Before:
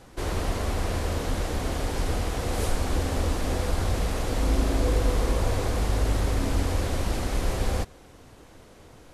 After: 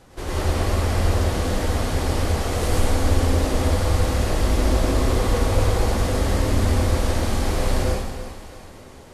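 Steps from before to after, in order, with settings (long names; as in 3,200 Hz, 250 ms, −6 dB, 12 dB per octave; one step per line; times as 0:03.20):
on a send: echo with a time of its own for lows and highs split 390 Hz, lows 191 ms, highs 330 ms, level −12 dB
on the sum: dense smooth reverb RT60 1.1 s, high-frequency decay 0.85×, pre-delay 85 ms, DRR −5 dB
level −1 dB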